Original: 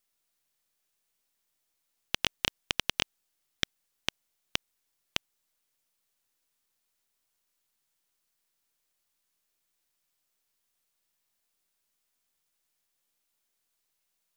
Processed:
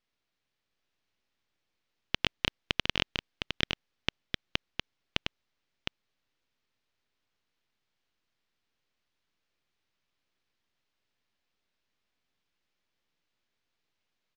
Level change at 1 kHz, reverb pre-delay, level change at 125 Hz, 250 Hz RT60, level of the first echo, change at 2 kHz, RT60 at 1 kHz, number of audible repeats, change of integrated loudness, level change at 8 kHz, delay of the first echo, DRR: +1.0 dB, no reverb, +6.0 dB, no reverb, -5.0 dB, +2.0 dB, no reverb, 1, -0.5 dB, -8.5 dB, 710 ms, no reverb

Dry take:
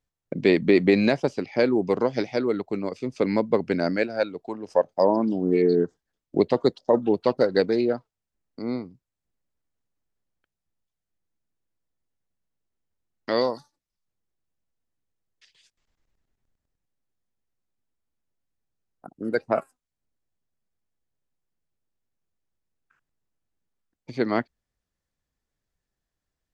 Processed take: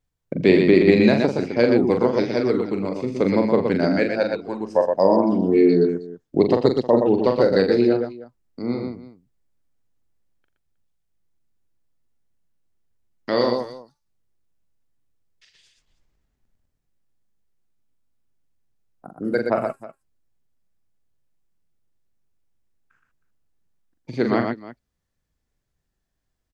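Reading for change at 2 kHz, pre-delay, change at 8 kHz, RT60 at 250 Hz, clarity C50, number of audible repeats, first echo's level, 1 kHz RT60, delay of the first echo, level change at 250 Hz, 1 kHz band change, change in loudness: +3.0 dB, no reverb, no reading, no reverb, no reverb, 4, -6.0 dB, no reverb, 42 ms, +5.0 dB, +3.5 dB, +4.5 dB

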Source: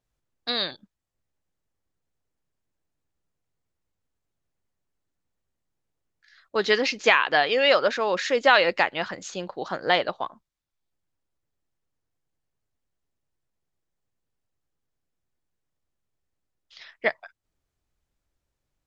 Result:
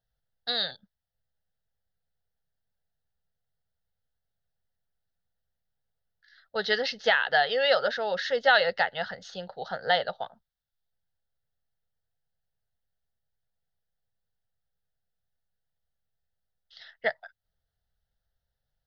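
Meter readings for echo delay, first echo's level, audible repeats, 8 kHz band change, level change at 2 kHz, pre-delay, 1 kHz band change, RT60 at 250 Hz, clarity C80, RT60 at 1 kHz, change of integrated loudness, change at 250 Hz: no echo, no echo, no echo, no reading, -3.0 dB, no reverb, -3.5 dB, no reverb, no reverb, no reverb, -3.5 dB, -10.5 dB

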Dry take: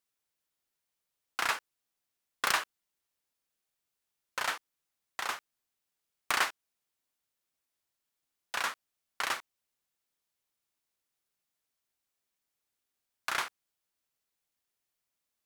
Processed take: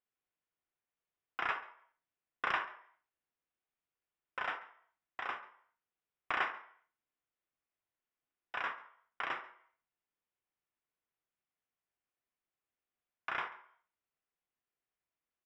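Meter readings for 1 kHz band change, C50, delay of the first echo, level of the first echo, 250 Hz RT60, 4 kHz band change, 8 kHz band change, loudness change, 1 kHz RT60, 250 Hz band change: -3.5 dB, 12.0 dB, 138 ms, -21.0 dB, 0.50 s, -12.0 dB, under -25 dB, -5.5 dB, 0.60 s, -3.5 dB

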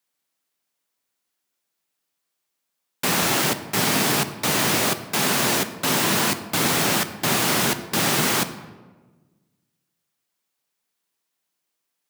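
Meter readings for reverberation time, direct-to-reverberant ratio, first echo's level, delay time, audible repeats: 1.3 s, 10.0 dB, no echo, no echo, no echo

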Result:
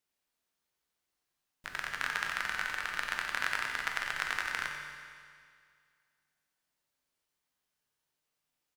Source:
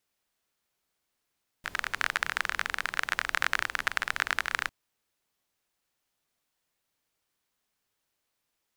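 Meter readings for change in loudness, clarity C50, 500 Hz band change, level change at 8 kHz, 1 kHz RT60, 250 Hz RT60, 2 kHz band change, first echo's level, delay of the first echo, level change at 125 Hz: -4.0 dB, 3.0 dB, -4.5 dB, -4.0 dB, 2.1 s, 2.1 s, -4.0 dB, -10.5 dB, 90 ms, -3.5 dB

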